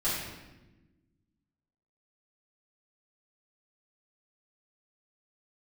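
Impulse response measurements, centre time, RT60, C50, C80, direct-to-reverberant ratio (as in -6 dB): 72 ms, 1.1 s, 0.0 dB, 3.0 dB, -12.0 dB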